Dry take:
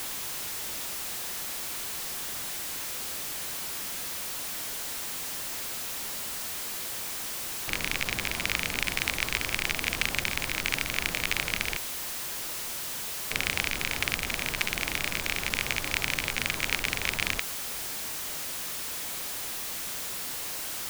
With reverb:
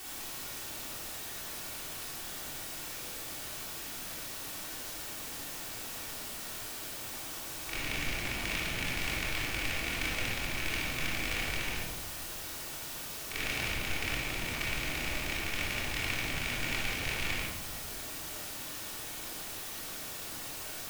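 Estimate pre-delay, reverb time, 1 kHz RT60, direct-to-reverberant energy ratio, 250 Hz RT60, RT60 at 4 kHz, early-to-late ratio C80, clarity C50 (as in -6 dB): 3 ms, 1.3 s, 1.1 s, -7.5 dB, 1.8 s, 0.70 s, 3.5 dB, -1.0 dB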